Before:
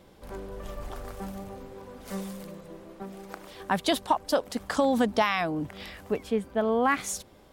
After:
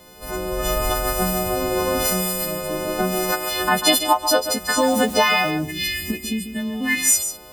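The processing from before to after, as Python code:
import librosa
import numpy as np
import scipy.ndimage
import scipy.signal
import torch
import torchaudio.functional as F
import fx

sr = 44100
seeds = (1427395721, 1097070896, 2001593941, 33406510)

y = fx.freq_snap(x, sr, grid_st=3)
y = fx.recorder_agc(y, sr, target_db=-17.0, rise_db_per_s=15.0, max_gain_db=30)
y = fx.quant_dither(y, sr, seeds[0], bits=8, dither='triangular', at=(4.77, 5.5), fade=0.02)
y = fx.spec_box(y, sr, start_s=5.57, length_s=1.48, low_hz=370.0, high_hz=1600.0, gain_db=-19)
y = fx.quant_companded(y, sr, bits=8)
y = y + 10.0 ** (-10.0 / 20.0) * np.pad(y, (int(143 * sr / 1000.0), 0))[:len(y)]
y = F.gain(torch.from_numpy(y), 5.5).numpy()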